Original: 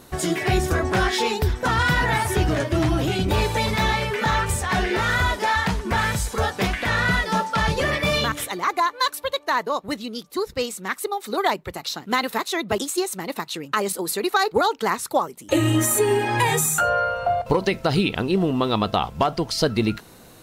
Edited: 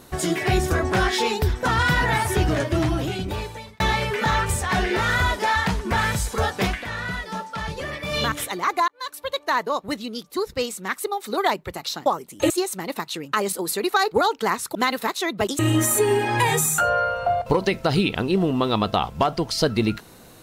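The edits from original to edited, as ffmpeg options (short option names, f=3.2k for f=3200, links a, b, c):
-filter_complex "[0:a]asplit=9[a][b][c][d][e][f][g][h][i];[a]atrim=end=3.8,asetpts=PTS-STARTPTS,afade=t=out:st=2.7:d=1.1[j];[b]atrim=start=3.8:end=6.85,asetpts=PTS-STARTPTS,afade=t=in:d=0.004:c=hsin,afade=t=out:st=2.89:d=0.16:silence=0.375837[k];[c]atrim=start=6.85:end=8.08,asetpts=PTS-STARTPTS,volume=-8.5dB[l];[d]atrim=start=8.08:end=8.88,asetpts=PTS-STARTPTS,afade=t=in:d=0.16:silence=0.375837,afade=t=out:st=0.796:d=0.004:c=hsin[m];[e]atrim=start=8.88:end=12.062,asetpts=PTS-STARTPTS,afade=t=in:d=0.54[n];[f]atrim=start=15.148:end=15.592[o];[g]atrim=start=12.898:end=15.152[p];[h]atrim=start=12.058:end=12.902[q];[i]atrim=start=15.588[r];[j][k][l][m][n]concat=n=5:v=0:a=1[s];[s][o]acrossfade=d=0.004:c1=hsin:c2=hsin[t];[t][p]acrossfade=d=0.004:c1=hsin:c2=hsin[u];[u][q]acrossfade=d=0.004:c1=hsin:c2=hsin[v];[v][r]acrossfade=d=0.004:c1=hsin:c2=hsin"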